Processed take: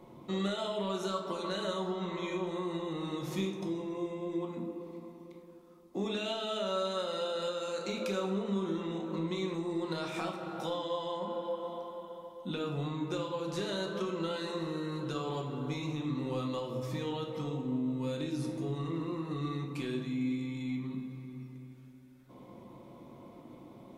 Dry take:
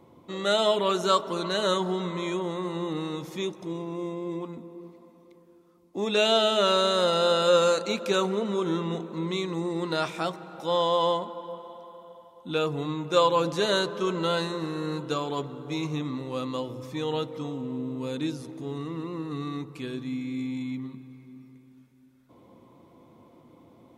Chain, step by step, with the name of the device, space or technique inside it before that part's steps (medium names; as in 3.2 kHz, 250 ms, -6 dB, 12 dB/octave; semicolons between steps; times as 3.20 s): 1.86–2.47 s: peaking EQ 8.6 kHz -14.5 dB 0.21 oct; serial compression, leveller first (compression, threshold -28 dBFS, peak gain reduction 11.5 dB; compression, threshold -35 dBFS, peak gain reduction 9.5 dB); simulated room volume 330 m³, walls mixed, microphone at 1 m